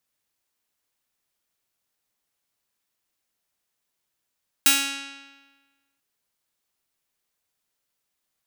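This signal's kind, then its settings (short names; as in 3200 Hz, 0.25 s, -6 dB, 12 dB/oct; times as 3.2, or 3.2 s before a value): plucked string C#4, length 1.34 s, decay 1.35 s, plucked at 0.47, bright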